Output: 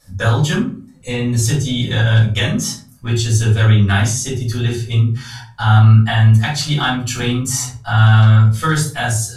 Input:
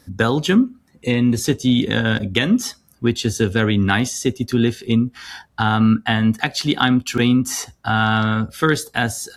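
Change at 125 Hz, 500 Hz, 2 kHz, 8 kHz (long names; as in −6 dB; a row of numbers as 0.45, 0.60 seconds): +11.0, −2.5, +0.5, +6.0 decibels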